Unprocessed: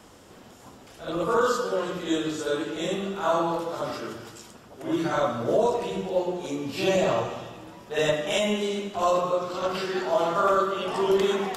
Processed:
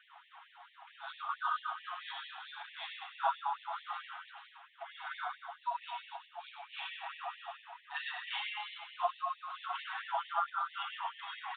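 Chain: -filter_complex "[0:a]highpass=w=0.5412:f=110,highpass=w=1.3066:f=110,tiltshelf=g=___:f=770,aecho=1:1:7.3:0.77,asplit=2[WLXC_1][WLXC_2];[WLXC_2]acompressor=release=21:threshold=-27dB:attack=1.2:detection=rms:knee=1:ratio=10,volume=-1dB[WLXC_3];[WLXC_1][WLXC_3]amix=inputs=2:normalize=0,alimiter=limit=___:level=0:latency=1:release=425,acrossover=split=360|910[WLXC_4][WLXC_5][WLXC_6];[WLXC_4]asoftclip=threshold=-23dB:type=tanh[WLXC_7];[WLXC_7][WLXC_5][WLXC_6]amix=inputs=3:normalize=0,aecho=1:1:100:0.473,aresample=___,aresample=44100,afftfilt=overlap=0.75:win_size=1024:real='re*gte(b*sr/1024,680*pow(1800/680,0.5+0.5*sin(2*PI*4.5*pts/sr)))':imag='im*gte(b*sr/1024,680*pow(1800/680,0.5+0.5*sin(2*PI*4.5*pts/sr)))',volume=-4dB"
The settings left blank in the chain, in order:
9, -12.5dB, 8000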